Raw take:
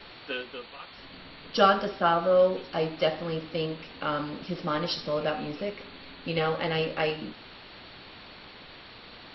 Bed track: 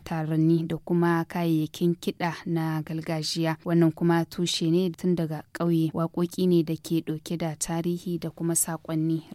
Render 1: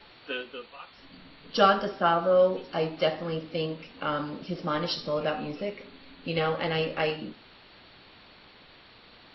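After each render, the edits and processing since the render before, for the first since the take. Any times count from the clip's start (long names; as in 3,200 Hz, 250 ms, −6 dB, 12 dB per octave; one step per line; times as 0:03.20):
noise reduction from a noise print 6 dB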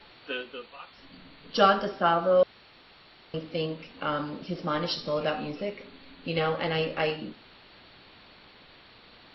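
0:02.43–0:03.34: fill with room tone
0:05.07–0:05.50: high-shelf EQ 4,300 Hz +6 dB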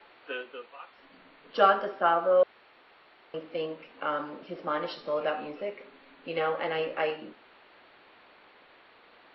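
three-way crossover with the lows and the highs turned down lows −17 dB, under 310 Hz, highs −19 dB, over 2,800 Hz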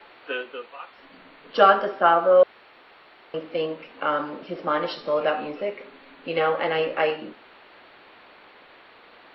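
level +6.5 dB
brickwall limiter −2 dBFS, peak gain reduction 2.5 dB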